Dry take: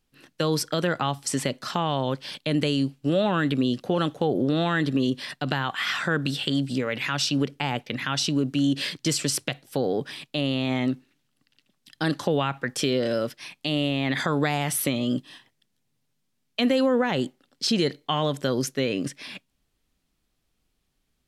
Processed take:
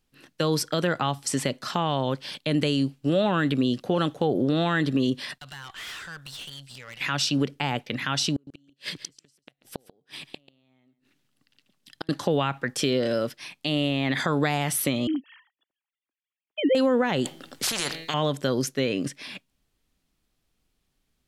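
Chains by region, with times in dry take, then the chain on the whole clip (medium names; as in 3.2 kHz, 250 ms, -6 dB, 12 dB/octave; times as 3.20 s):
5.38–7.01 s: amplifier tone stack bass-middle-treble 10-0-10 + valve stage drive 35 dB, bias 0.55
8.33–12.09 s: inverted gate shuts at -17 dBFS, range -40 dB + delay 139 ms -16 dB
15.07–16.75 s: formants replaced by sine waves + distance through air 190 m
17.25–18.14 s: de-hum 162.3 Hz, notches 28 + spectrum-flattening compressor 4:1
whole clip: none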